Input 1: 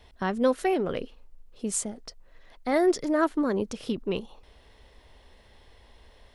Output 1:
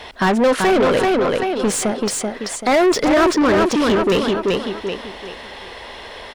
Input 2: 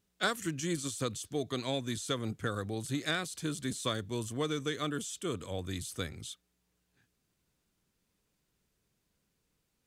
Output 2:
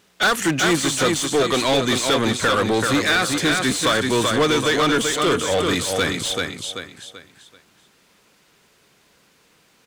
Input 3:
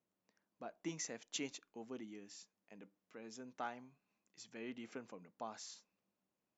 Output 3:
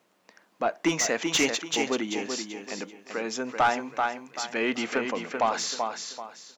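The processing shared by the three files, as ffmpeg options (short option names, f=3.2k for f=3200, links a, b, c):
-filter_complex "[0:a]asplit=2[a][b];[b]aeval=exprs='sgn(val(0))*max(abs(val(0))-0.0126,0)':c=same,volume=-9dB[c];[a][c]amix=inputs=2:normalize=0,aecho=1:1:385|770|1155|1540:0.447|0.134|0.0402|0.0121,asoftclip=type=tanh:threshold=-17dB,asplit=2[d][e];[e]highpass=f=720:p=1,volume=25dB,asoftclip=type=tanh:threshold=-17dB[f];[d][f]amix=inputs=2:normalize=0,lowpass=f=3.1k:p=1,volume=-6dB,volume=8dB"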